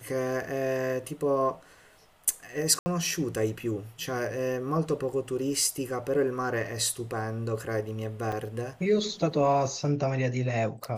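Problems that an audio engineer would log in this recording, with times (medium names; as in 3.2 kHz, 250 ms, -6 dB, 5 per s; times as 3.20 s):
2.79–2.86 s: dropout 70 ms
8.32 s: dropout 5 ms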